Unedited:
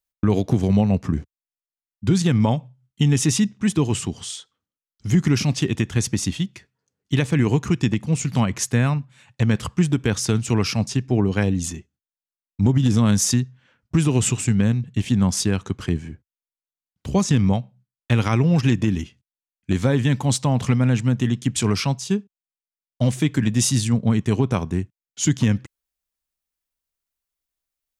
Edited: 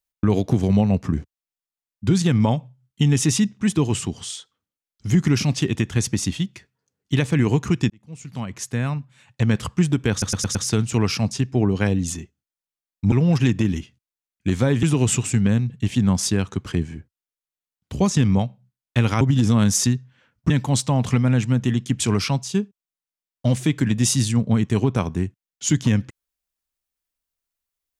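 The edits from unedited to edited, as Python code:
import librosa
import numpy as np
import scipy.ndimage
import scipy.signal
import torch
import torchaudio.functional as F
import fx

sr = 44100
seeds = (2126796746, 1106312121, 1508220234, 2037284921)

y = fx.edit(x, sr, fx.fade_in_span(start_s=7.9, length_s=1.6),
    fx.stutter(start_s=10.11, slice_s=0.11, count=5),
    fx.swap(start_s=12.68, length_s=1.29, other_s=18.35, other_length_s=1.71), tone=tone)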